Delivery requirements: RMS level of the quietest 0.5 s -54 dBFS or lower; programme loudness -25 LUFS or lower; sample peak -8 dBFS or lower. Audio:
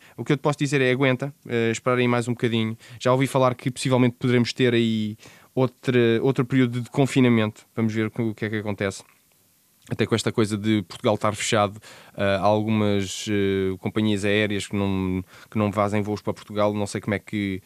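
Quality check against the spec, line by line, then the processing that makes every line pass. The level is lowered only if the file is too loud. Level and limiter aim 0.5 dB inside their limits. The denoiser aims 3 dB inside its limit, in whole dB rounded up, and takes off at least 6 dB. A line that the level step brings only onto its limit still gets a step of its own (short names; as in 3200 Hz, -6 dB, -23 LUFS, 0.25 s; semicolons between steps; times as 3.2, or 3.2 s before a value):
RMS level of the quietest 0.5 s -61 dBFS: OK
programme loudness -23.5 LUFS: fail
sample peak -5.5 dBFS: fail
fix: gain -2 dB; limiter -8.5 dBFS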